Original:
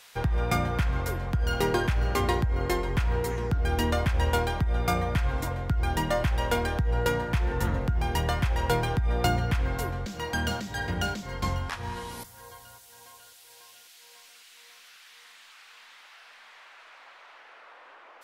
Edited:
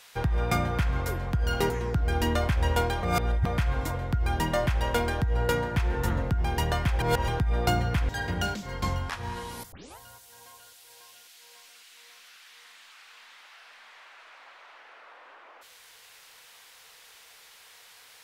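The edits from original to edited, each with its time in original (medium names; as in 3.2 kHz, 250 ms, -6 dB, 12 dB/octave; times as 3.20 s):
1.70–3.27 s: delete
4.60–5.03 s: reverse
8.57–8.85 s: reverse
9.66–10.69 s: delete
12.32 s: tape start 0.26 s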